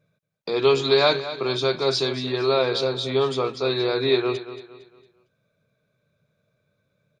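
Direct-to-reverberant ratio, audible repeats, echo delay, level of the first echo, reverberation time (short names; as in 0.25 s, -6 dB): none, 3, 0.228 s, -13.0 dB, none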